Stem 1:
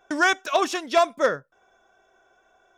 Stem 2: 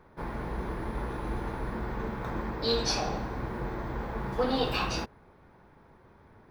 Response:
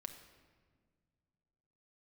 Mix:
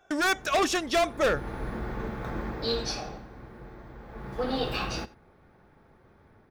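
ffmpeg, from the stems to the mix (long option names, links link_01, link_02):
-filter_complex "[0:a]asoftclip=type=hard:threshold=-22dB,volume=-1.5dB[link_01];[1:a]volume=7dB,afade=type=in:start_time=1.02:duration=0.6:silence=0.237137,afade=type=out:start_time=2.54:duration=0.7:silence=0.266073,afade=type=in:start_time=4.04:duration=0.48:silence=0.316228,asplit=2[link_02][link_03];[link_03]volume=-20dB,aecho=0:1:89:1[link_04];[link_01][link_02][link_04]amix=inputs=3:normalize=0,dynaudnorm=framelen=110:gausssize=5:maxgain=3.5dB,bandreject=frequency=980:width=7.8"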